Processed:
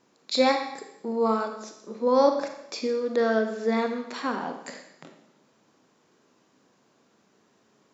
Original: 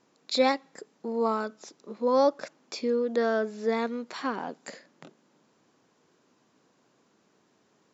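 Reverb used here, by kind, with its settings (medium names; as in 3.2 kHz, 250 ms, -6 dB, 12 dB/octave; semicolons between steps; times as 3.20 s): Schroeder reverb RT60 0.82 s, combs from 28 ms, DRR 5 dB; trim +1.5 dB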